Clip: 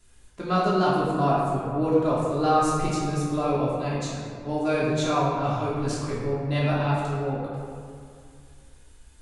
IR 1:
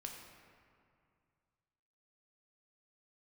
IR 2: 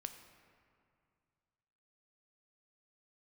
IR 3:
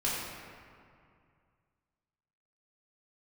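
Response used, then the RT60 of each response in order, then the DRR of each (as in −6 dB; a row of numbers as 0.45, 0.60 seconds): 3; 2.3, 2.3, 2.3 seconds; 0.5, 7.0, −8.5 decibels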